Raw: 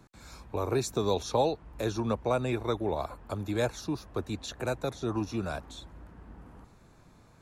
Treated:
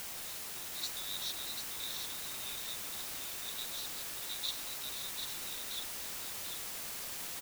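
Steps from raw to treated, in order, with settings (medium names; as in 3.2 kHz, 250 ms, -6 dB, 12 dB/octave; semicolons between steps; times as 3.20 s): peak limiter -25 dBFS, peak gain reduction 10 dB; ladder band-pass 4 kHz, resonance 75%; word length cut 8-bit, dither triangular; delay 742 ms -5.5 dB; trim +5 dB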